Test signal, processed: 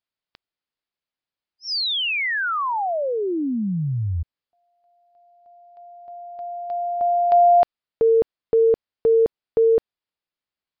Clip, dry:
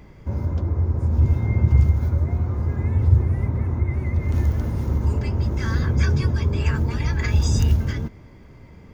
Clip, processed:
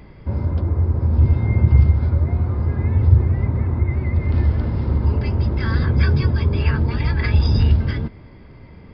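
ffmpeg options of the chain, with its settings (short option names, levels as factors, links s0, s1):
-af "aresample=11025,aresample=44100,volume=1.41"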